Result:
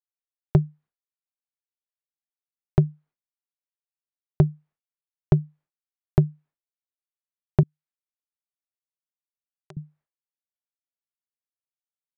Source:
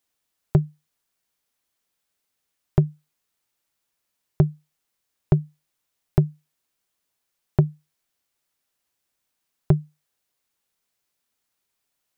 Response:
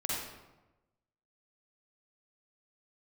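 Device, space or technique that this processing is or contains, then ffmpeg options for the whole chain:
hearing-loss simulation: -filter_complex "[0:a]lowpass=1600,agate=range=-33dB:threshold=-50dB:ratio=3:detection=peak,asettb=1/sr,asplit=3[link_01][link_02][link_03];[link_01]atrim=end=7.634[link_04];[link_02]atrim=start=7.63:end=9.77,asetpts=PTS-STARTPTS,afade=type=in:duration=0.004:curve=qsin,afade=type=out:start_time=2.136:duration=0.004:curve=qsin,aderivative[link_05];[link_03]atrim=start=9.766[link_06];[link_04][link_05]acrossfade=duration=0.004:curve1=hsin:curve2=qsin[link_07];[link_07][link_06]acrossfade=duration=0.004:curve1=qsin:curve2=hsin"

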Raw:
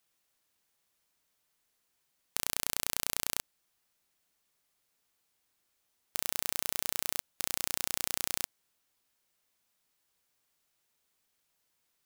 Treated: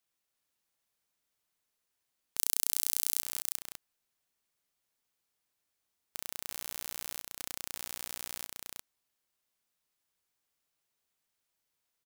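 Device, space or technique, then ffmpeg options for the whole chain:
ducked delay: -filter_complex "[0:a]asettb=1/sr,asplit=3[link_01][link_02][link_03];[link_01]atrim=end=2.374[link_04];[link_02]atrim=start=2.37:end=3.22,asetpts=PTS-STARTPTS,afade=type=in:duration=0.004:curve=qsin,afade=type=out:start_time=0.846:duration=0.004:curve=qsin,bass=frequency=250:gain=-6,treble=frequency=4000:gain=12[link_05];[link_03]atrim=start=3.216[link_06];[link_04][link_05]acrossfade=duration=0.004:curve1=hsin:curve2=qsin[link_07];[link_07][link_06]acrossfade=duration=0.004:curve1=qsin:curve2=hsin,asplit=3[link_08][link_09][link_10];[link_09]adelay=353,volume=-4dB[link_11];[link_10]apad=whole_len=547023[link_12];[link_11][link_12]sidechaincompress=threshold=-29dB:ratio=8:attack=9.8:release=123[link_13];[link_08][link_13]amix=inputs=2:normalize=0,volume=-7dB"

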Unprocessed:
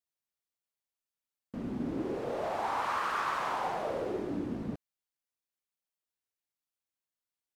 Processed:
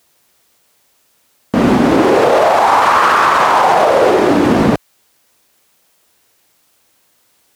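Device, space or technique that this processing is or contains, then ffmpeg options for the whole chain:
mastering chain: -filter_complex "[0:a]highpass=45,equalizer=frequency=480:width_type=o:width=2.1:gain=3.5,acrossover=split=660|4400[link_01][link_02][link_03];[link_01]acompressor=threshold=-46dB:ratio=4[link_04];[link_02]acompressor=threshold=-35dB:ratio=4[link_05];[link_03]acompressor=threshold=-57dB:ratio=4[link_06];[link_04][link_05][link_06]amix=inputs=3:normalize=0,acompressor=threshold=-40dB:ratio=2.5,alimiter=level_in=36dB:limit=-1dB:release=50:level=0:latency=1,volume=-1dB"

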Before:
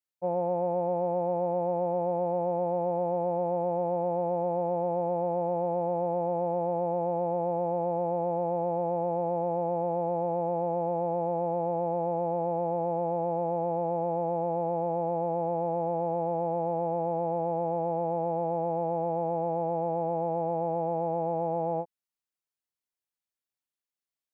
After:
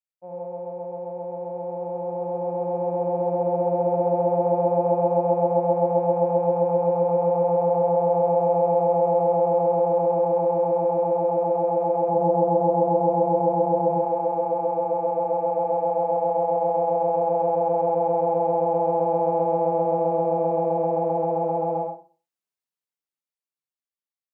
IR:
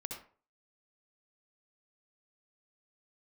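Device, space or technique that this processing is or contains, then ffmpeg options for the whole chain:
far laptop microphone: -filter_complex "[0:a]asplit=3[link_01][link_02][link_03];[link_01]afade=type=out:start_time=12.08:duration=0.02[link_04];[link_02]aemphasis=mode=reproduction:type=riaa,afade=type=in:start_time=12.08:duration=0.02,afade=type=out:start_time=13.89:duration=0.02[link_05];[link_03]afade=type=in:start_time=13.89:duration=0.02[link_06];[link_04][link_05][link_06]amix=inputs=3:normalize=0,bandreject=frequency=50:width_type=h:width=6,bandreject=frequency=100:width_type=h:width=6,bandreject=frequency=150:width_type=h:width=6,bandreject=frequency=200:width_type=h:width=6,bandreject=frequency=250:width_type=h:width=6,bandreject=frequency=300:width_type=h:width=6,bandreject=frequency=350:width_type=h:width=6[link_07];[1:a]atrim=start_sample=2205[link_08];[link_07][link_08]afir=irnorm=-1:irlink=0,highpass=120,dynaudnorm=framelen=510:gausssize=11:maxgain=15dB,volume=-6.5dB"

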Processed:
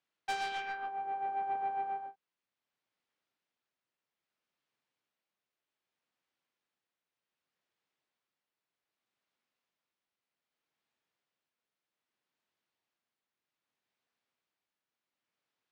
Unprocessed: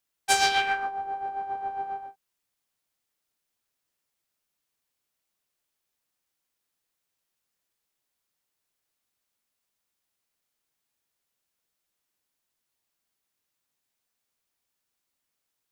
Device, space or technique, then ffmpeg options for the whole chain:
AM radio: -af "highpass=130,lowpass=3400,acompressor=threshold=-29dB:ratio=6,asoftclip=type=tanh:threshold=-26dB,tremolo=f=0.64:d=0.39"

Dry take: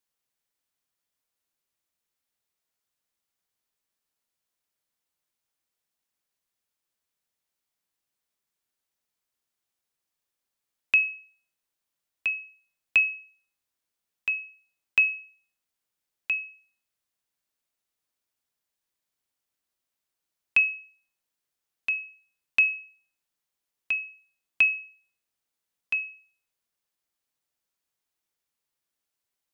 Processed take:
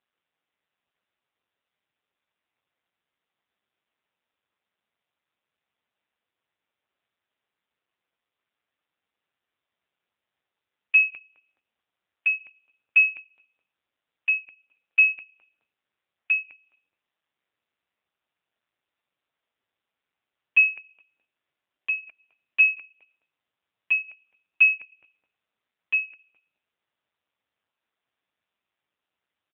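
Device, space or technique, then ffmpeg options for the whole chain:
telephone: -filter_complex "[0:a]lowshelf=frequency=480:gain=-3.5,asplit=3[link_01][link_02][link_03];[link_01]afade=type=out:start_time=13.18:duration=0.02[link_04];[link_02]lowshelf=frequency=120:gain=3.5,afade=type=in:start_time=13.18:duration=0.02,afade=type=out:start_time=14.43:duration=0.02[link_05];[link_03]afade=type=in:start_time=14.43:duration=0.02[link_06];[link_04][link_05][link_06]amix=inputs=3:normalize=0,asplit=3[link_07][link_08][link_09];[link_07]afade=type=out:start_time=20.76:duration=0.02[link_10];[link_08]aecho=1:1:2.9:0.46,afade=type=in:start_time=20.76:duration=0.02,afade=type=out:start_time=21.97:duration=0.02[link_11];[link_09]afade=type=in:start_time=21.97:duration=0.02[link_12];[link_10][link_11][link_12]amix=inputs=3:normalize=0,highpass=250,lowpass=3100,asplit=2[link_13][link_14];[link_14]adelay=211,lowpass=frequency=830:poles=1,volume=-13.5dB,asplit=2[link_15][link_16];[link_16]adelay=211,lowpass=frequency=830:poles=1,volume=0.34,asplit=2[link_17][link_18];[link_18]adelay=211,lowpass=frequency=830:poles=1,volume=0.34[link_19];[link_13][link_15][link_17][link_19]amix=inputs=4:normalize=0,asoftclip=type=tanh:threshold=-15.5dB,volume=9dB" -ar 8000 -c:a libopencore_amrnb -b:a 5900

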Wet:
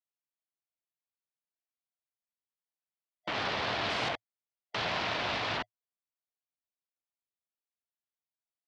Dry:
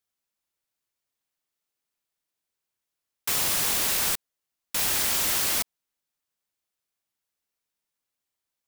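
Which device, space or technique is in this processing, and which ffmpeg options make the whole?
ring modulator pedal into a guitar cabinet: -filter_complex "[0:a]acrossover=split=3800[link_01][link_02];[link_02]acompressor=threshold=-33dB:ratio=4:attack=1:release=60[link_03];[link_01][link_03]amix=inputs=2:normalize=0,asettb=1/sr,asplit=3[link_04][link_05][link_06];[link_04]atrim=end=3.834[link_07];[link_05]atrim=start=3.83:end=4.85,asetpts=PTS-STARTPTS,afade=type=in:duration=0.004:curve=qsin,afade=type=out:start_time=1.016:duration=0.004:curve=qsin,highshelf=frequency=8100:gain=8[link_08];[link_06]atrim=start=4.846[link_09];[link_07][link_08]acrossfade=duration=0.004:curve1=hsin:curve2=qsin[link_10];[link_10][link_09]acrossfade=duration=0.004:curve1=qsin:curve2=hsin,afwtdn=0.0141,aeval=exprs='val(0)*sgn(sin(2*PI*670*n/s))':channel_layout=same,highpass=78,equalizer=frequency=110:width_type=q:width=4:gain=5,equalizer=frequency=670:width_type=q:width=4:gain=7,equalizer=frequency=1000:width_type=q:width=4:gain=3,lowpass=frequency=4500:width=0.5412,lowpass=frequency=4500:width=1.3066"

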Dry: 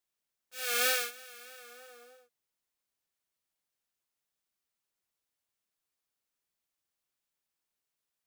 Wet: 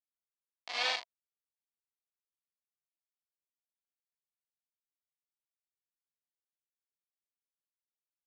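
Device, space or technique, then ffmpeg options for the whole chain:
hand-held game console: -af "acrusher=bits=3:mix=0:aa=0.000001,highpass=490,equalizer=frequency=680:width_type=q:width=4:gain=10,equalizer=frequency=970:width_type=q:width=4:gain=9,equalizer=frequency=1400:width_type=q:width=4:gain=-5,equalizer=frequency=2100:width_type=q:width=4:gain=7,equalizer=frequency=3200:width_type=q:width=4:gain=4,equalizer=frequency=4500:width_type=q:width=4:gain=7,lowpass=frequency=4800:width=0.5412,lowpass=frequency=4800:width=1.3066,volume=-4dB"

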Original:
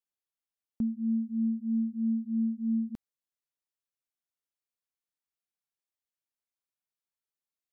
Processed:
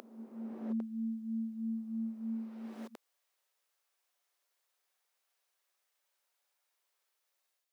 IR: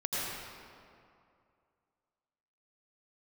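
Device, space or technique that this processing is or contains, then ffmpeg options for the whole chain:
ghost voice: -filter_complex "[0:a]areverse[link_01];[1:a]atrim=start_sample=2205[link_02];[link_01][link_02]afir=irnorm=-1:irlink=0,areverse,highpass=frequency=440:width=0.5412,highpass=frequency=440:width=1.3066,volume=7.5dB"

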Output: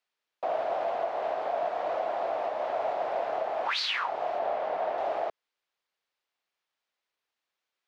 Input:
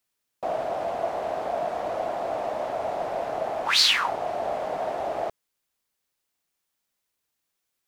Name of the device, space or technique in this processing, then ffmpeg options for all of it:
DJ mixer with the lows and highs turned down: -filter_complex "[0:a]asettb=1/sr,asplit=3[link_01][link_02][link_03];[link_01]atrim=end=4.384[link_04];[link_02]atrim=start=4.38:end=4.98,asetpts=PTS-STARTPTS,afade=type=in:duration=0.004:curve=qsin,afade=type=out:start_time=0.596:duration=0.004:curve=qsin,highshelf=frequency=6800:gain=-10.5[link_05];[link_03]atrim=start=4.976[link_06];[link_04][link_05]acrossfade=duration=0.004:curve1=hsin:curve2=qsin[link_07];[link_07][link_06]acrossfade=duration=0.004:curve1=qsin:curve2=hsin,acrossover=split=380 4800:gain=0.2 1 0.1[link_08][link_09][link_10];[link_08][link_09][link_10]amix=inputs=3:normalize=0,alimiter=limit=-20.5dB:level=0:latency=1:release=222"

